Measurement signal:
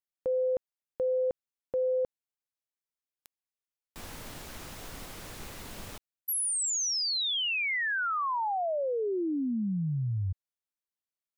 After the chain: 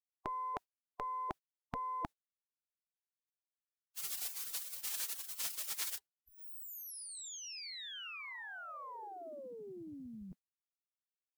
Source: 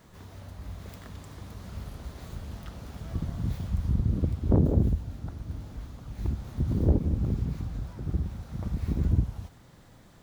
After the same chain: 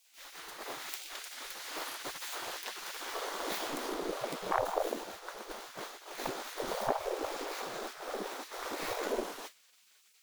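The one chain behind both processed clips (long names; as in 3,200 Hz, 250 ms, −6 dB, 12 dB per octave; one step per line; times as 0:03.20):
harmonic generator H 4 −32 dB, 6 −27 dB, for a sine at −10 dBFS
gate on every frequency bin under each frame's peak −25 dB weak
downward expander −54 dBFS, range −12 dB
level +14 dB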